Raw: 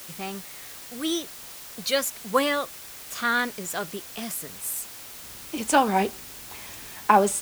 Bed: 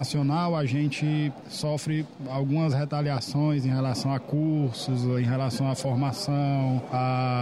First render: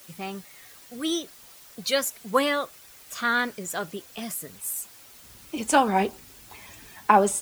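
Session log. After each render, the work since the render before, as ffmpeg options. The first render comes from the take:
-af "afftdn=nr=9:nf=-42"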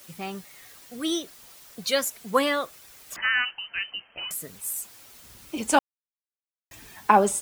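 -filter_complex "[0:a]asettb=1/sr,asplit=3[a][b][c];[a]atrim=end=3.164[d];[b]atrim=start=3.16:end=4.31,asetpts=PTS-STARTPTS,afade=t=in:d=0.004:c=qsin,afade=t=out:st=1.146:d=0.004:c=qsin,lowpass=f=2.7k:t=q:w=0.5098,lowpass=f=2.7k:t=q:w=0.6013,lowpass=f=2.7k:t=q:w=0.9,lowpass=f=2.7k:t=q:w=2.563,afreqshift=-3200[e];[c]atrim=start=4.306[f];[d][e]acrossfade=d=0.004:c1=hsin:c2=qsin[g];[g][f]acrossfade=d=0.004:c1=qsin:c2=hsin,asplit=3[h][i][j];[h]atrim=end=5.79,asetpts=PTS-STARTPTS,afade=t=out:st=5.786:d=0.004:c=hsin[k];[i]atrim=start=5.79:end=6.71,asetpts=PTS-STARTPTS,volume=0[l];[j]atrim=start=6.71,asetpts=PTS-STARTPTS,afade=t=in:d=0.004:c=hsin[m];[k][l][m]concat=n=3:v=0:a=1"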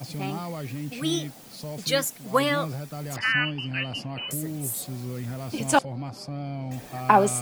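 -filter_complex "[1:a]volume=-8.5dB[a];[0:a][a]amix=inputs=2:normalize=0"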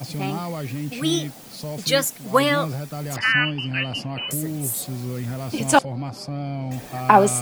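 -af "volume=4.5dB,alimiter=limit=-1dB:level=0:latency=1"

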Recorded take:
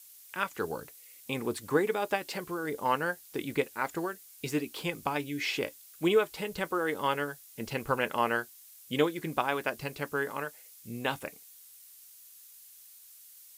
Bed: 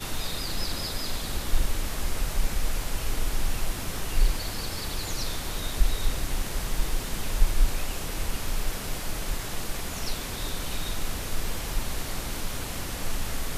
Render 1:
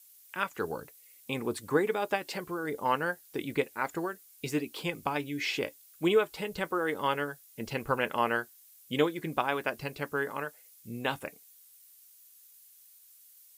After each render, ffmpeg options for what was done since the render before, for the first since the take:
-af "afftdn=nr=6:nf=-54"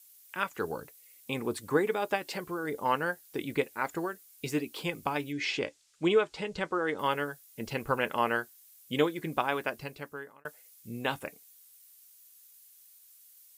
-filter_complex "[0:a]asettb=1/sr,asplit=3[a][b][c];[a]atrim=end=5.324[d];[b]atrim=start=5.32:end=6.99,asetpts=PTS-STARTPTS,afade=t=in:d=0.004:c=qsin,afade=t=out:st=1.666:d=0.004:c=qsin,lowpass=f=7.6k:w=0.5412,lowpass=f=7.6k:w=1.3066[e];[c]atrim=start=6.986[f];[d][e]acrossfade=d=0.004:c1=hsin:c2=qsin[g];[g][f]acrossfade=d=0.004:c1=qsin:c2=hsin,asplit=2[h][i];[h]atrim=end=10.45,asetpts=PTS-STARTPTS,afade=t=out:st=9.58:d=0.87[j];[i]atrim=start=10.45,asetpts=PTS-STARTPTS,afade=t=in:d=0.004:c=hsin[k];[j][k]concat=n=2:v=0:a=1"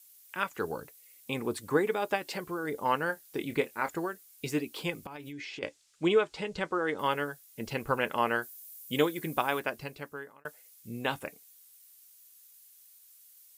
-filter_complex "[0:a]asettb=1/sr,asplit=3[a][b][c];[a]atrim=end=3.074[d];[b]atrim=start=3.07:end=3.89,asetpts=PTS-STARTPTS,afade=t=in:d=0.004:c=qsin,afade=t=out:st=0.816:d=0.004:c=qsin,asplit=2[e][f];[f]adelay=26,volume=-10dB[g];[e][g]amix=inputs=2:normalize=0,atrim=end_sample=36162[h];[c]atrim=start=3.886[i];[d][h]acrossfade=d=0.004:c1=hsin:c2=qsin[j];[j][i]acrossfade=d=0.004:c1=qsin:c2=hsin,asettb=1/sr,asplit=3[k][l][m];[k]atrim=end=5.024[n];[l]atrim=start=5.02:end=5.63,asetpts=PTS-STARTPTS,afade=t=in:d=0.004:c=qsin,afade=t=out:st=0.606:d=0.004:c=qsin,acompressor=threshold=-38dB:ratio=12:attack=3.2:release=140:knee=1:detection=peak[o];[m]atrim=start=5.626[p];[n][o]acrossfade=d=0.004:c1=hsin:c2=qsin[q];[q][p]acrossfade=d=0.004:c1=qsin:c2=hsin,asettb=1/sr,asplit=3[r][s][t];[r]atrim=end=8.424[u];[s]atrim=start=8.42:end=9.6,asetpts=PTS-STARTPTS,afade=t=in:d=0.004:c=qsin,afade=t=out:st=1.176:d=0.004:c=qsin,highshelf=f=8.3k:g=11.5[v];[t]atrim=start=9.596[w];[u][v]acrossfade=d=0.004:c1=hsin:c2=qsin[x];[x][w]acrossfade=d=0.004:c1=qsin:c2=hsin"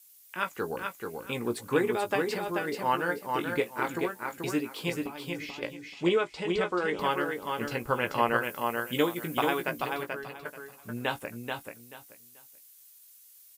-filter_complex "[0:a]asplit=2[a][b];[b]adelay=17,volume=-8dB[c];[a][c]amix=inputs=2:normalize=0,aecho=1:1:434|868|1302:0.596|0.131|0.0288"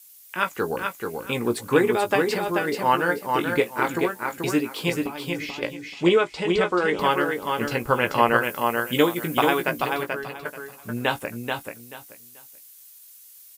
-af "volume=7dB"

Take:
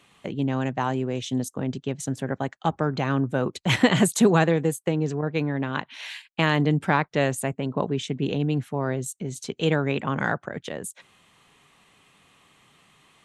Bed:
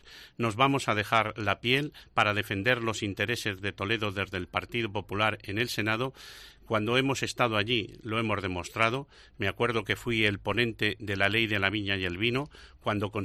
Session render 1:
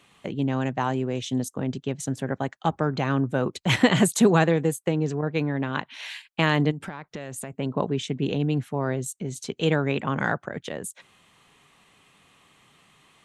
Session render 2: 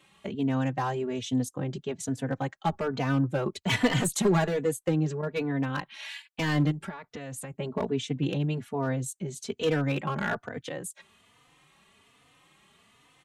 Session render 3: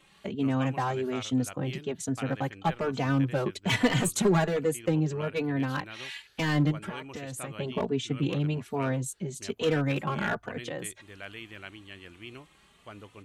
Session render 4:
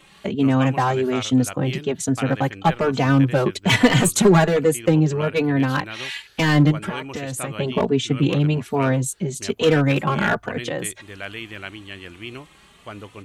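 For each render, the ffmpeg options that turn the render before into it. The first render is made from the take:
-filter_complex "[0:a]asplit=3[a][b][c];[a]afade=t=out:st=6.7:d=0.02[d];[b]acompressor=threshold=-30dB:ratio=16:attack=3.2:release=140:knee=1:detection=peak,afade=t=in:st=6.7:d=0.02,afade=t=out:st=7.58:d=0.02[e];[c]afade=t=in:st=7.58:d=0.02[f];[d][e][f]amix=inputs=3:normalize=0"
-filter_complex "[0:a]asoftclip=type=hard:threshold=-15.5dB,asplit=2[a][b];[b]adelay=3.3,afreqshift=1.2[c];[a][c]amix=inputs=2:normalize=1"
-filter_complex "[1:a]volume=-17dB[a];[0:a][a]amix=inputs=2:normalize=0"
-af "volume=9.5dB,alimiter=limit=-2dB:level=0:latency=1"

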